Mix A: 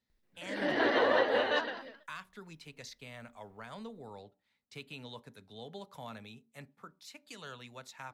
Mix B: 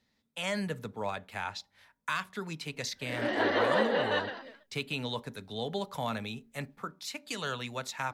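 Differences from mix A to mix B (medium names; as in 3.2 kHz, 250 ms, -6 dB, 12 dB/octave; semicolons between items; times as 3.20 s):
speech +11.5 dB; background: entry +2.60 s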